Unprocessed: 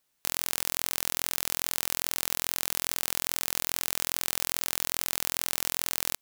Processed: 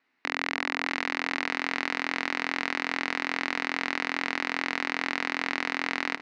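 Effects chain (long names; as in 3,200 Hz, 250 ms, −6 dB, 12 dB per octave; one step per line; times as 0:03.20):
loudspeaker in its box 260–3,500 Hz, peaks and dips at 270 Hz +10 dB, 550 Hz −9 dB, 2,000 Hz +7 dB, 3,300 Hz −10 dB
pitch vibrato 4.3 Hz 13 cents
delay that swaps between a low-pass and a high-pass 310 ms, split 1,100 Hz, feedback 52%, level −9.5 dB
level +8 dB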